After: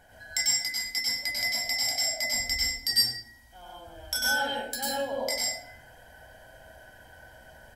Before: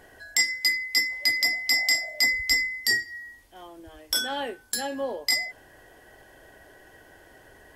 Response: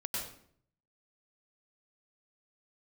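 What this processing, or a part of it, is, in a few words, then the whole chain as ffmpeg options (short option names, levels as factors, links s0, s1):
microphone above a desk: -filter_complex "[0:a]aecho=1:1:1.3:0.72[s0];[1:a]atrim=start_sample=2205[s1];[s0][s1]afir=irnorm=-1:irlink=0,volume=0.631"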